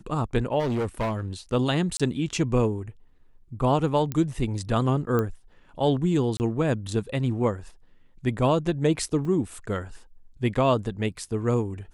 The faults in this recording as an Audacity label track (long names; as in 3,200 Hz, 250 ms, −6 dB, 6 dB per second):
0.590000	1.210000	clipping −23 dBFS
1.970000	2.000000	drop-out 26 ms
4.120000	4.120000	click −15 dBFS
5.190000	5.190000	click −14 dBFS
6.370000	6.400000	drop-out 29 ms
9.250000	9.250000	drop-out 2.6 ms